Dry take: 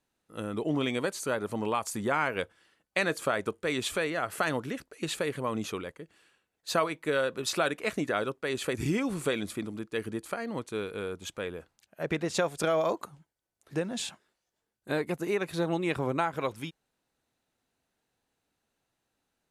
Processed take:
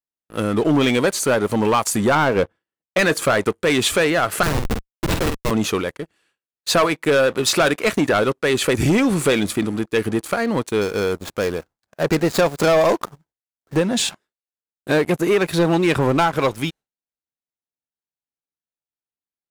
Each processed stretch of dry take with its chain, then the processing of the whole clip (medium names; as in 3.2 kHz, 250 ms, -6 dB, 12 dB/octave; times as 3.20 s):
2.15–2.99 s: high-pass 310 Hz 6 dB/octave + tilt EQ -4 dB/octave
4.43–5.51 s: de-hum 62.62 Hz, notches 11 + Schmitt trigger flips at -28 dBFS + doubling 48 ms -6 dB
10.81–13.77 s: median filter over 15 samples + treble shelf 3.6 kHz +8 dB
whole clip: gate with hold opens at -53 dBFS; waveshaping leveller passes 3; trim +3.5 dB